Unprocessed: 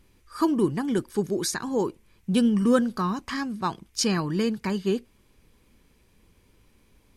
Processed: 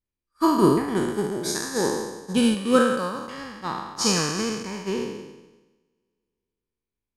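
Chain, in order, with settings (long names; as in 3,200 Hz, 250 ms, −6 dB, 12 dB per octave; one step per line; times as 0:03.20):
peak hold with a decay on every bin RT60 2.78 s
0:02.54–0:03.38: low-shelf EQ 120 Hz −11 dB
expander for the loud parts 2.5 to 1, over −40 dBFS
level +3 dB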